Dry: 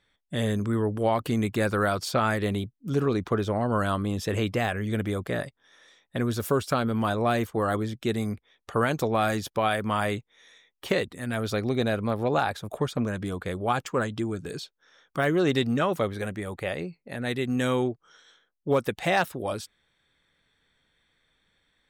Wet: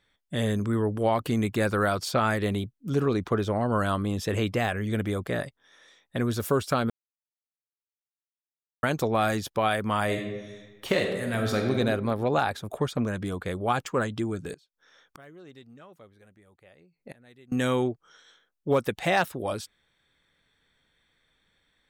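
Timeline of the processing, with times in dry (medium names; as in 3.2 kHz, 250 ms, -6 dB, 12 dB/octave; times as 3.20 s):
6.90–8.83 s: mute
10.05–11.74 s: reverb throw, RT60 1.3 s, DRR 2 dB
14.53–17.52 s: inverted gate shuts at -28 dBFS, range -25 dB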